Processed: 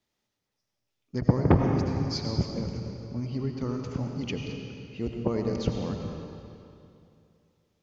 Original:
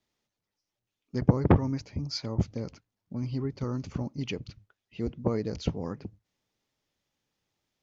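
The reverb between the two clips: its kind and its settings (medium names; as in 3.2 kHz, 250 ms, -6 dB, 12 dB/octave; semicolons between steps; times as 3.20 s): algorithmic reverb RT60 2.6 s, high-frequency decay 0.9×, pre-delay 55 ms, DRR 2 dB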